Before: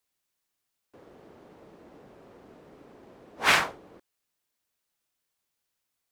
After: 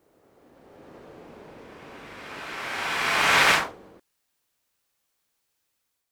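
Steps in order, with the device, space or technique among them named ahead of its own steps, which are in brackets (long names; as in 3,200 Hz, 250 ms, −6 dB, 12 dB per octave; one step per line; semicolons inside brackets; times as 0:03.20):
reverse reverb (reversed playback; convolution reverb RT60 3.0 s, pre-delay 56 ms, DRR −5 dB; reversed playback)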